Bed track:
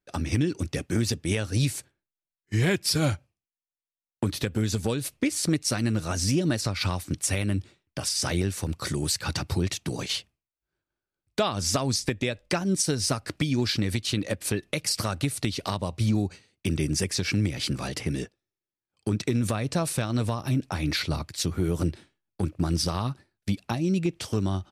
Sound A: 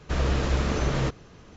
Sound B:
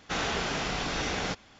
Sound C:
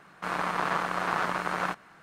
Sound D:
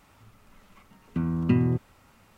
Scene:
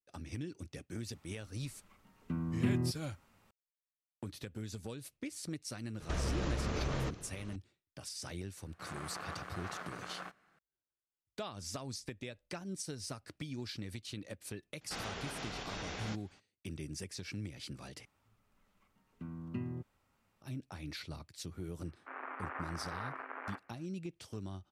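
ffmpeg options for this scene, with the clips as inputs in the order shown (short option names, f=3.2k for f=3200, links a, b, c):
-filter_complex "[4:a]asplit=2[a][b];[3:a]asplit=2[c][d];[0:a]volume=-17dB[e];[1:a]acompressor=threshold=-29dB:ratio=6:attack=3.2:release=140:knee=1:detection=peak[f];[c]equalizer=f=950:w=7.5:g=-7.5[g];[2:a]alimiter=limit=-22dB:level=0:latency=1:release=92[h];[d]highpass=f=190:t=q:w=0.5412,highpass=f=190:t=q:w=1.307,lowpass=f=2.4k:t=q:w=0.5176,lowpass=f=2.4k:t=q:w=0.7071,lowpass=f=2.4k:t=q:w=1.932,afreqshift=83[i];[e]asplit=2[j][k];[j]atrim=end=18.054[l];[b]atrim=end=2.37,asetpts=PTS-STARTPTS,volume=-17.5dB[m];[k]atrim=start=20.416[n];[a]atrim=end=2.37,asetpts=PTS-STARTPTS,volume=-9.5dB,afade=t=in:d=0.004:c=hsin,afade=t=out:st=2.366:d=0.004:c=hsin,adelay=1140[o];[f]atrim=end=1.56,asetpts=PTS-STARTPTS,volume=-2.5dB,afade=t=in:d=0.004:c=hsin,afade=t=out:st=1.556:d=0.004:c=hsin,adelay=6000[p];[g]atrim=end=2.02,asetpts=PTS-STARTPTS,volume=-15.5dB,afade=t=in:d=0.004:c=hsin,afade=t=out:st=2.016:d=0.004:c=hsin,adelay=8570[q];[h]atrim=end=1.59,asetpts=PTS-STARTPTS,volume=-11dB,afade=t=in:d=0.004:c=hsin,afade=t=out:st=1.586:d=0.004:c=hsin,adelay=14810[r];[i]atrim=end=2.02,asetpts=PTS-STARTPTS,volume=-14.5dB,afade=t=in:d=0.004:c=hsin,afade=t=out:st=2.016:d=0.004:c=hsin,adelay=21840[s];[l][m]acrossfade=d=0.004:c1=hsin:c2=hsin[t];[t][n]acrossfade=d=0.004:c1=hsin:c2=hsin[u];[u][o][p][q][r][s]amix=inputs=6:normalize=0"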